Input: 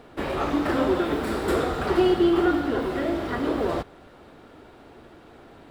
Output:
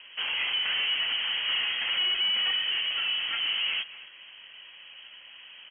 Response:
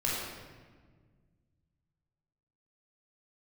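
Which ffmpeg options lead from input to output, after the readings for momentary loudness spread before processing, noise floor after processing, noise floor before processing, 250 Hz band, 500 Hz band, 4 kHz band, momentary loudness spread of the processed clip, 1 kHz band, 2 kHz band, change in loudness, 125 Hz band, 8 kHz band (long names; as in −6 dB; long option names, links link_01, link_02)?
8 LU, −50 dBFS, −50 dBFS, below −35 dB, −29.5 dB, +16.0 dB, 22 LU, −14.0 dB, +3.5 dB, −1.5 dB, below −25 dB, can't be measured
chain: -filter_complex "[0:a]aresample=11025,asoftclip=type=tanh:threshold=-24.5dB,aresample=44100,asplit=2[link_01][link_02];[link_02]adelay=230,highpass=300,lowpass=3400,asoftclip=type=hard:threshold=-33.5dB,volume=-12dB[link_03];[link_01][link_03]amix=inputs=2:normalize=0,lowpass=frequency=2800:width_type=q:width=0.5098,lowpass=frequency=2800:width_type=q:width=0.6013,lowpass=frequency=2800:width_type=q:width=0.9,lowpass=frequency=2800:width_type=q:width=2.563,afreqshift=-3300"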